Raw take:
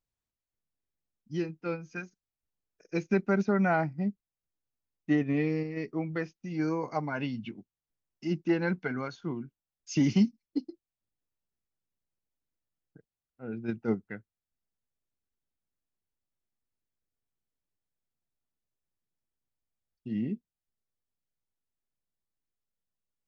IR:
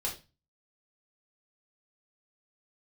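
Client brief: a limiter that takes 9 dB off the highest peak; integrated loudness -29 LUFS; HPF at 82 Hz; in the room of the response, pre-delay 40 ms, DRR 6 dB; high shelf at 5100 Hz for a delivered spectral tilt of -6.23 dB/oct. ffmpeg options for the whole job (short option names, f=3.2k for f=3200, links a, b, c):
-filter_complex "[0:a]highpass=82,highshelf=f=5.1k:g=6,alimiter=limit=-23.5dB:level=0:latency=1,asplit=2[a][b];[1:a]atrim=start_sample=2205,adelay=40[c];[b][c]afir=irnorm=-1:irlink=0,volume=-9.5dB[d];[a][d]amix=inputs=2:normalize=0,volume=5dB"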